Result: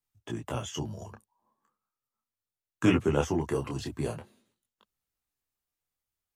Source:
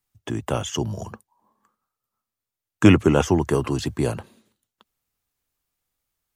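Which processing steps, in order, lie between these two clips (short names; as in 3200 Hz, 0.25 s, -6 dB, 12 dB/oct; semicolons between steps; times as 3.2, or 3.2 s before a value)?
detuned doubles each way 14 cents; gain -5 dB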